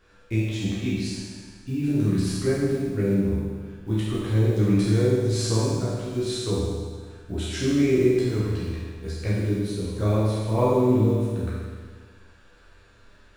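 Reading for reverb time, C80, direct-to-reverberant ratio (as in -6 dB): 1.6 s, 0.0 dB, -9.5 dB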